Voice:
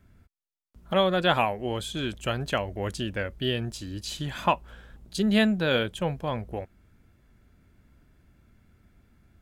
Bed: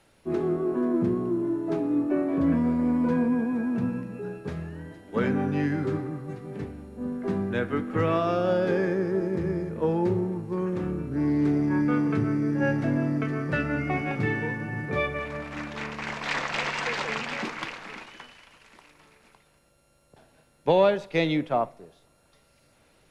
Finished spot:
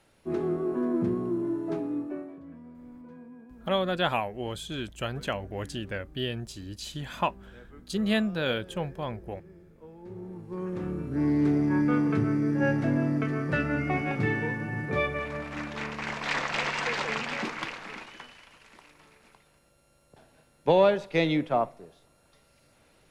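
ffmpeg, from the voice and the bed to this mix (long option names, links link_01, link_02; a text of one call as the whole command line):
ffmpeg -i stem1.wav -i stem2.wav -filter_complex "[0:a]adelay=2750,volume=-4dB[link_01];[1:a]volume=20.5dB,afade=type=out:start_time=1.63:duration=0.77:silence=0.0891251,afade=type=in:start_time=10.02:duration=1.21:silence=0.0707946[link_02];[link_01][link_02]amix=inputs=2:normalize=0" out.wav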